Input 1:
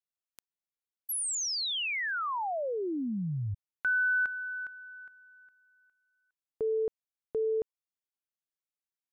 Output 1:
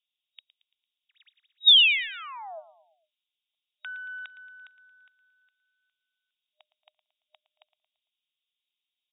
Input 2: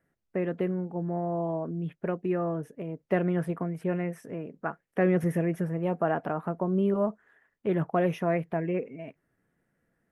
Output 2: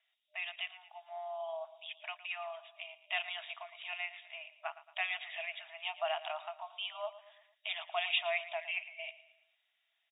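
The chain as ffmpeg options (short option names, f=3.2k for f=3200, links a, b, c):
-af "aexciter=amount=11.5:drive=9.7:freq=2.6k,afftfilt=real='re*between(b*sr/4096,610,3800)':imag='im*between(b*sr/4096,610,3800)':win_size=4096:overlap=0.75,aecho=1:1:113|226|339|452:0.168|0.0806|0.0387|0.0186,volume=-7dB"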